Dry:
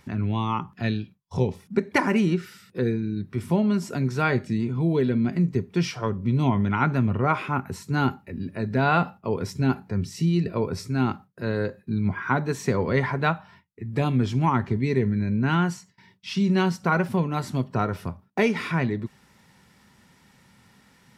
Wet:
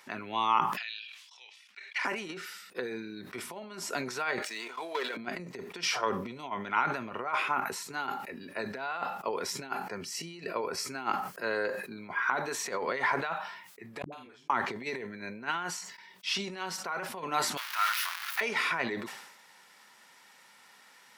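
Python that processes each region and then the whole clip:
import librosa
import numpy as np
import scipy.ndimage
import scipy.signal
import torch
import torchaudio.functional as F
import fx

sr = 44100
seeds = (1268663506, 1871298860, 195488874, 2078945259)

y = fx.chain(x, sr, fx.ladder_bandpass(hz=3300.0, resonance_pct=35),
    fx.sustainer(db_per_s=33.0), at=(0.77, 2.05))
y = fx.chain(y, sr, fx.highpass(hz=660.0, slope=12),
    fx.level_steps(step_db=11),
    fx.leveller(passes=2), at=(4.42, 5.17))
y = fx.chain(y, sr, fx.highpass(hz=49.0, slope=12),
    fx.notch(hz=3700.0, q=6.7), at=(9.69, 11.98))
y = fx.chain(y, sr, fx.doubler(ms=47.0, db=-4),
    fx.dispersion(late='highs', ms=104.0, hz=310.0),
    fx.gate_flip(shuts_db=-29.0, range_db=-39), at=(14.02, 14.5))
y = fx.chain(y, sr, fx.zero_step(step_db=-26.5),
    fx.highpass(hz=1300.0, slope=24),
    fx.peak_eq(hz=7700.0, db=-9.0, octaves=0.59), at=(17.57, 18.41))
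y = fx.over_compress(y, sr, threshold_db=-25.0, ratio=-0.5)
y = scipy.signal.sosfilt(scipy.signal.butter(2, 660.0, 'highpass', fs=sr, output='sos'), y)
y = fx.sustainer(y, sr, db_per_s=57.0)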